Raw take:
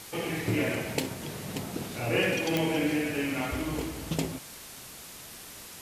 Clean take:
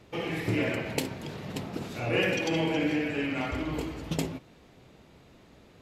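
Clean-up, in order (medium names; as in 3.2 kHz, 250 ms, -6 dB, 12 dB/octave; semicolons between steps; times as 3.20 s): de-click; noise print and reduce 10 dB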